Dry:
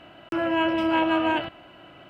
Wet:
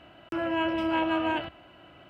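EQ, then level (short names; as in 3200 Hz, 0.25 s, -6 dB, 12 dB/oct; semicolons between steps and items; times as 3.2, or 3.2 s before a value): bell 70 Hz +7 dB 0.82 oct; -4.5 dB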